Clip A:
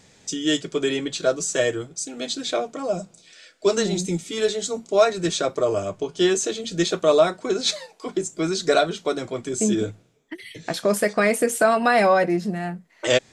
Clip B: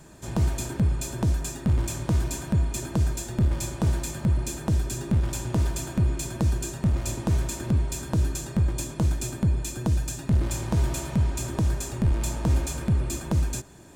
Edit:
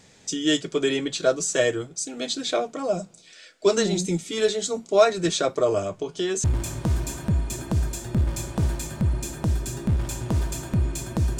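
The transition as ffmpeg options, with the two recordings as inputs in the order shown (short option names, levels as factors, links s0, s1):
-filter_complex "[0:a]asettb=1/sr,asplit=3[s0][s1][s2];[s0]atrim=end=5.834[s3];[s1]atrim=start=5.83:end=6.44,asetpts=PTS-STARTPTS,afade=t=in:d=0.004:c=qsin,afade=t=out:st=0.606:d=0.004:c=qsin,acompressor=threshold=0.0708:ratio=4:attack=3.2:release=140:knee=1:detection=peak[s4];[s2]atrim=start=6.436[s5];[s3][s4]acrossfade=d=0.004:c1=hsin:c2=qsin[s6];[s6][s5]acrossfade=d=0.004:c1=qsin:c2=hsin,apad=whole_dur=11.39,atrim=end=11.39,atrim=end=6.442[s7];[1:a]atrim=start=1.678:end=6.63[s8];[s7][s8]acrossfade=d=0.004:c1=hsin:c2=hsin"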